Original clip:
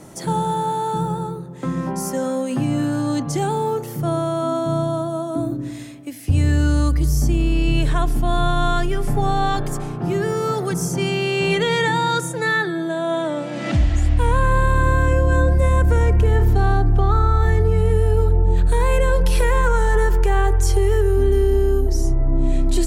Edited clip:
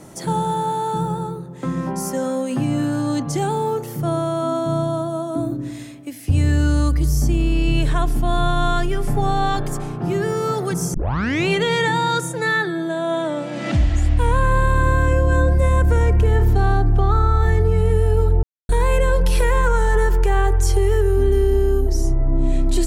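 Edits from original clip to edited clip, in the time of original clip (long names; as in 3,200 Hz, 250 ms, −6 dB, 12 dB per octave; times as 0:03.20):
0:10.94: tape start 0.54 s
0:18.43–0:18.69: silence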